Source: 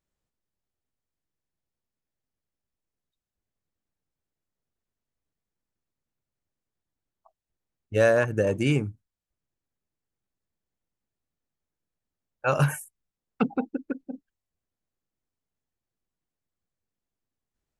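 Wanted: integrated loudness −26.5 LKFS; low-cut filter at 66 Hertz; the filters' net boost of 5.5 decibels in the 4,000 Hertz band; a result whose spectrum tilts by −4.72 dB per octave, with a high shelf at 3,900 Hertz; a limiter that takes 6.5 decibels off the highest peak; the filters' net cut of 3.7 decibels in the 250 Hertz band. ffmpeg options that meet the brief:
ffmpeg -i in.wav -af "highpass=66,equalizer=frequency=250:width_type=o:gain=-5,highshelf=frequency=3900:gain=8.5,equalizer=frequency=4000:width_type=o:gain=3.5,volume=1.5dB,alimiter=limit=-12.5dB:level=0:latency=1" out.wav

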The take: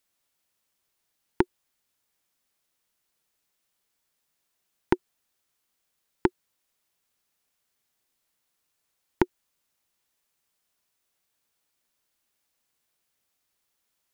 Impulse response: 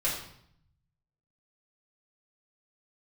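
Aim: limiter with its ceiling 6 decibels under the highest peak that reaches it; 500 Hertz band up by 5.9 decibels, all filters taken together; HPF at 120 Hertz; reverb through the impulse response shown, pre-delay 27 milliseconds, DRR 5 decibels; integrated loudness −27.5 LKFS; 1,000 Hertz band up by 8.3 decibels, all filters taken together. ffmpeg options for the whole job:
-filter_complex "[0:a]highpass=120,equalizer=frequency=500:width_type=o:gain=8.5,equalizer=frequency=1000:width_type=o:gain=7,alimiter=limit=-6.5dB:level=0:latency=1,asplit=2[link_01][link_02];[1:a]atrim=start_sample=2205,adelay=27[link_03];[link_02][link_03]afir=irnorm=-1:irlink=0,volume=-13dB[link_04];[link_01][link_04]amix=inputs=2:normalize=0,volume=4dB"

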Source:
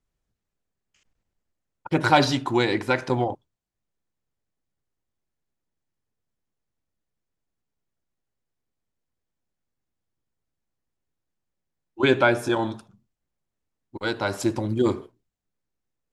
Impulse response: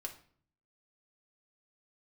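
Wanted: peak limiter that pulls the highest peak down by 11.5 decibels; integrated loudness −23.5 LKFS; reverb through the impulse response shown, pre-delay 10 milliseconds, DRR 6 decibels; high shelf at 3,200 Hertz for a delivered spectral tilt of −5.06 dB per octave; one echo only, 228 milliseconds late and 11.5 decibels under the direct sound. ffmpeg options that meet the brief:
-filter_complex "[0:a]highshelf=frequency=3200:gain=-7,alimiter=limit=-16dB:level=0:latency=1,aecho=1:1:228:0.266,asplit=2[link_01][link_02];[1:a]atrim=start_sample=2205,adelay=10[link_03];[link_02][link_03]afir=irnorm=-1:irlink=0,volume=-4dB[link_04];[link_01][link_04]amix=inputs=2:normalize=0,volume=3.5dB"

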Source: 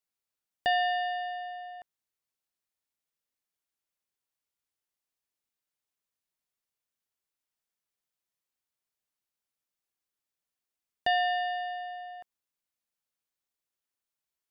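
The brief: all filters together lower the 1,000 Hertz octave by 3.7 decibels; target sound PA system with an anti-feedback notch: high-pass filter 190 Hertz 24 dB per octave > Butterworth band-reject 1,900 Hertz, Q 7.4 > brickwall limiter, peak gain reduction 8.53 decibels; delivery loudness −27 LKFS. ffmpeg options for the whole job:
ffmpeg -i in.wav -af "highpass=frequency=190:width=0.5412,highpass=frequency=190:width=1.3066,asuperstop=centerf=1900:order=8:qfactor=7.4,equalizer=frequency=1000:width_type=o:gain=-7,volume=11.5dB,alimiter=limit=-18.5dB:level=0:latency=1" out.wav

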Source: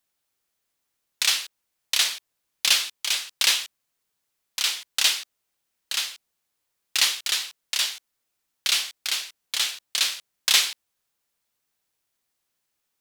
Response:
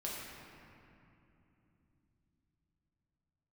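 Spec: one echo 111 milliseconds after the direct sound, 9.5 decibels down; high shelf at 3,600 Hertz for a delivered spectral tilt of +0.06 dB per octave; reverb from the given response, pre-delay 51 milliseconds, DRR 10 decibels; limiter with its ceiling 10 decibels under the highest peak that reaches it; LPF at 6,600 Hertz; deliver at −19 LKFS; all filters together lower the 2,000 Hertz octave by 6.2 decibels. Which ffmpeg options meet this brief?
-filter_complex "[0:a]lowpass=6600,equalizer=frequency=2000:width_type=o:gain=-6.5,highshelf=frequency=3600:gain=-4.5,alimiter=limit=-20dB:level=0:latency=1,aecho=1:1:111:0.335,asplit=2[link_01][link_02];[1:a]atrim=start_sample=2205,adelay=51[link_03];[link_02][link_03]afir=irnorm=-1:irlink=0,volume=-11.5dB[link_04];[link_01][link_04]amix=inputs=2:normalize=0,volume=13.5dB"

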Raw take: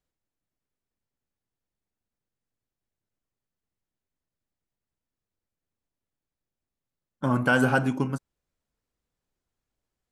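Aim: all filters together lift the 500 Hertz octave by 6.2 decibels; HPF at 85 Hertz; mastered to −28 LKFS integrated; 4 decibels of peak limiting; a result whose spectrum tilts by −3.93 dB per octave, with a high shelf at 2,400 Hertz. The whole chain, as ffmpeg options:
ffmpeg -i in.wav -af "highpass=85,equalizer=frequency=500:width_type=o:gain=7.5,highshelf=frequency=2400:gain=-5.5,volume=-3.5dB,alimiter=limit=-15dB:level=0:latency=1" out.wav

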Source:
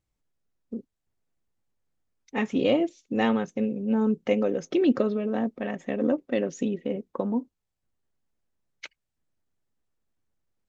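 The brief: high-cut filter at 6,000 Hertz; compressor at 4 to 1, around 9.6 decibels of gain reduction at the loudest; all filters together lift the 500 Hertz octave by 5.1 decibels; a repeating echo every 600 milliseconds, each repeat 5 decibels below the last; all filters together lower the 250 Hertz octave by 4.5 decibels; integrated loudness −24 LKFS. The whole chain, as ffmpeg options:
ffmpeg -i in.wav -af "lowpass=6000,equalizer=frequency=250:width_type=o:gain=-8,equalizer=frequency=500:width_type=o:gain=8,acompressor=threshold=-25dB:ratio=4,aecho=1:1:600|1200|1800|2400|3000|3600|4200:0.562|0.315|0.176|0.0988|0.0553|0.031|0.0173,volume=6dB" out.wav

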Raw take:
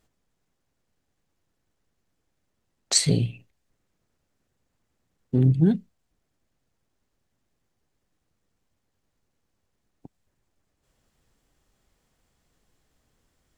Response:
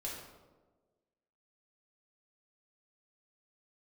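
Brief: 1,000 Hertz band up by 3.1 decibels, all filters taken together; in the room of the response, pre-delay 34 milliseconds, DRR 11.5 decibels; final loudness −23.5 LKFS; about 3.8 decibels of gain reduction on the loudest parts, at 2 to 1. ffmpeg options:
-filter_complex "[0:a]equalizer=frequency=1000:width_type=o:gain=4.5,acompressor=threshold=-21dB:ratio=2,asplit=2[link_01][link_02];[1:a]atrim=start_sample=2205,adelay=34[link_03];[link_02][link_03]afir=irnorm=-1:irlink=0,volume=-11.5dB[link_04];[link_01][link_04]amix=inputs=2:normalize=0,volume=2.5dB"

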